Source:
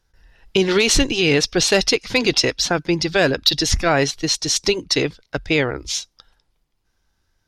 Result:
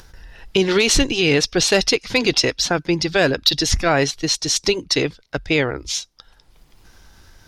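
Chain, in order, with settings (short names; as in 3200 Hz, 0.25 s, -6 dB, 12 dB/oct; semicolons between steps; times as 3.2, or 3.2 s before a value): upward compressor, threshold -29 dBFS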